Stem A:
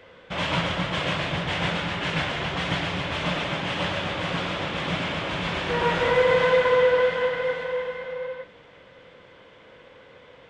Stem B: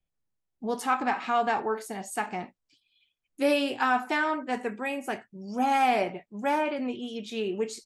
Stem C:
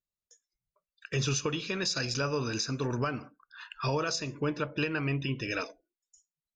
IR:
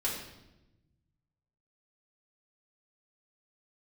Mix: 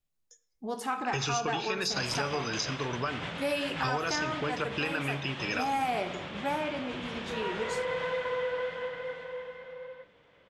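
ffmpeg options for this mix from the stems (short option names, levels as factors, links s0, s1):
-filter_complex "[0:a]adelay=1600,volume=0.266[s0];[1:a]volume=0.562,asplit=2[s1][s2];[s2]volume=0.237[s3];[2:a]volume=1.19,asplit=2[s4][s5];[s5]volume=0.106[s6];[3:a]atrim=start_sample=2205[s7];[s3][s6]amix=inputs=2:normalize=0[s8];[s8][s7]afir=irnorm=-1:irlink=0[s9];[s0][s1][s4][s9]amix=inputs=4:normalize=0,acrossover=split=570|5800[s10][s11][s12];[s10]acompressor=threshold=0.0178:ratio=4[s13];[s11]acompressor=threshold=0.0355:ratio=4[s14];[s12]acompressor=threshold=0.00794:ratio=4[s15];[s13][s14][s15]amix=inputs=3:normalize=0"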